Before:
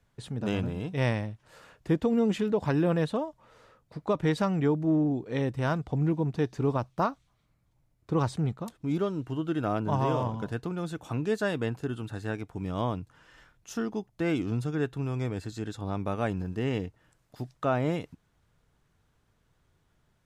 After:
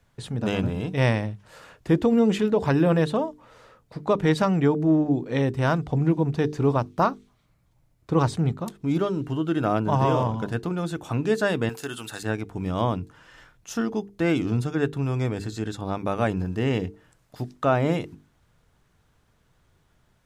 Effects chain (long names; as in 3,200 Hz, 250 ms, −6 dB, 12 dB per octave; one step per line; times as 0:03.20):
mains-hum notches 50/100/150/200/250/300/350/400/450 Hz
0:11.69–0:12.23: spectral tilt +4 dB per octave
level +6 dB